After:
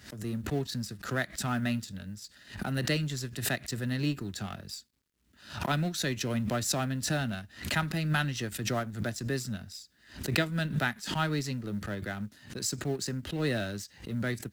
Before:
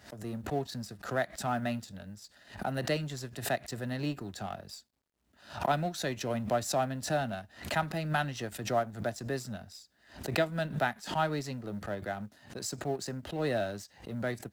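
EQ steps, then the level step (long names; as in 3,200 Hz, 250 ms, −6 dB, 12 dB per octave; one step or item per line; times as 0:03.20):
parametric band 710 Hz −12.5 dB 1.2 octaves
+5.5 dB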